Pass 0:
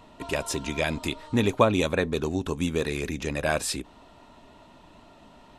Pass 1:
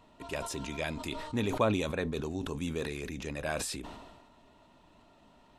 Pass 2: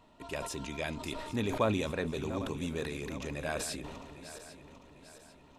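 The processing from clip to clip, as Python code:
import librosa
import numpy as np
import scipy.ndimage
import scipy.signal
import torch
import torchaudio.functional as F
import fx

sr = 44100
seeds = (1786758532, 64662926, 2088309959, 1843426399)

y1 = fx.sustainer(x, sr, db_per_s=41.0)
y1 = F.gain(torch.from_numpy(y1), -9.0).numpy()
y2 = fx.reverse_delay_fb(y1, sr, ms=399, feedback_pct=65, wet_db=-12)
y2 = F.gain(torch.from_numpy(y2), -1.5).numpy()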